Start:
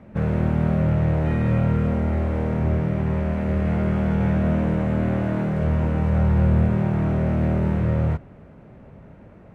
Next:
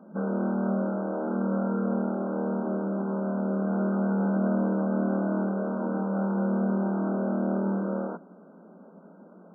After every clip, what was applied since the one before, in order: FFT band-pass 170–1600 Hz; gain -2 dB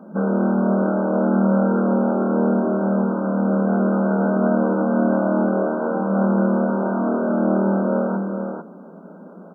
echo 0.447 s -5 dB; gain +8.5 dB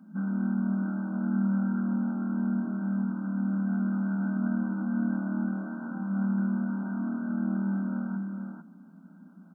EQ curve 270 Hz 0 dB, 460 Hz -28 dB, 760 Hz -12 dB, 1200 Hz -10 dB, 1900 Hz +6 dB; gain -8 dB

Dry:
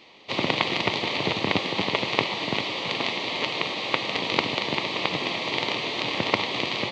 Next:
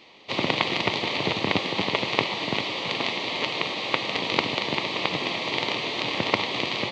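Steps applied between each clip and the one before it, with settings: nothing audible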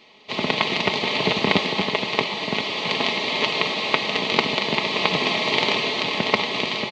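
comb 4.7 ms, depth 48%; AGC; gain -1 dB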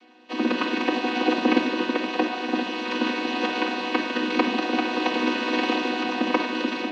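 chord vocoder major triad, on B3; shoebox room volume 1900 m³, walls furnished, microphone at 2 m; gain -2 dB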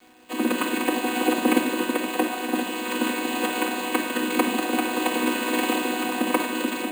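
crackle 460/s -43 dBFS; careless resampling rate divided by 4×, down filtered, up hold

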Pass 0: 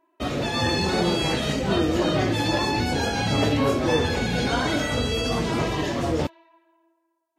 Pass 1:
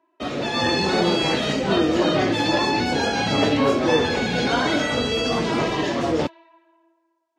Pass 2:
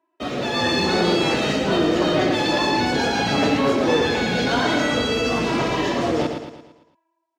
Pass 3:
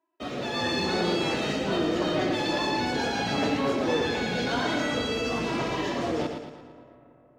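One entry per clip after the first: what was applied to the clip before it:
three-band isolator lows -12 dB, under 160 Hz, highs -14 dB, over 7200 Hz; AGC gain up to 3.5 dB
sample leveller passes 1; on a send: feedback echo 0.113 s, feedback 47%, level -6.5 dB; on the sum: gain -3.5 dB
reverb RT60 3.7 s, pre-delay 0.115 s, DRR 17.5 dB; gain -7 dB

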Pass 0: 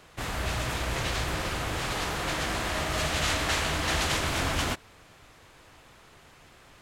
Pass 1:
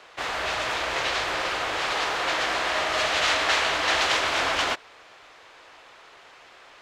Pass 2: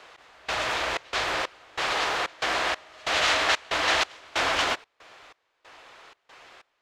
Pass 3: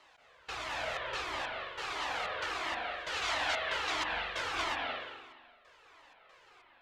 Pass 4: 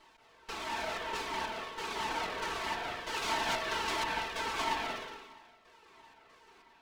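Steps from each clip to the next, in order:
three-band isolator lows -21 dB, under 390 Hz, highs -17 dB, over 6100 Hz; gain +6.5 dB
step gate "x..xxx.x" 93 bpm -24 dB
reverb RT60 1.3 s, pre-delay 0.176 s, DRR -0.5 dB; cascading flanger falling 1.5 Hz; gain -7.5 dB
minimum comb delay 4.5 ms; small resonant body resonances 340/920 Hz, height 10 dB, ringing for 30 ms

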